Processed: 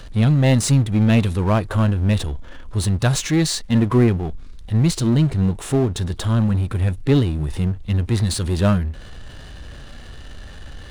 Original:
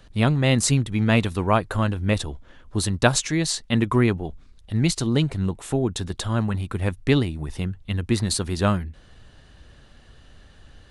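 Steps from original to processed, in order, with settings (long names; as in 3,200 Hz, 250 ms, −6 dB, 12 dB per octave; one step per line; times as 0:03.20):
harmonic and percussive parts rebalanced percussive −11 dB
power curve on the samples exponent 0.7
level +3 dB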